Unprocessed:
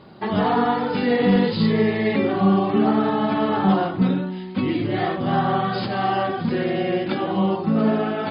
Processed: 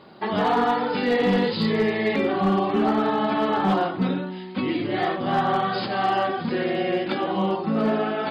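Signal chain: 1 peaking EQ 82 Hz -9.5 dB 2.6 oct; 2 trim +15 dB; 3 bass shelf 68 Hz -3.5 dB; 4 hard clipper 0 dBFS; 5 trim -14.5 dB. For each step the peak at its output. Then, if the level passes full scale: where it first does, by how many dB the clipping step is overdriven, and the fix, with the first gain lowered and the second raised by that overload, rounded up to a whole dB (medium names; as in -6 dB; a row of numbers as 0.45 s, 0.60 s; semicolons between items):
-9.5 dBFS, +5.5 dBFS, +5.5 dBFS, 0.0 dBFS, -14.5 dBFS; step 2, 5.5 dB; step 2 +9 dB, step 5 -8.5 dB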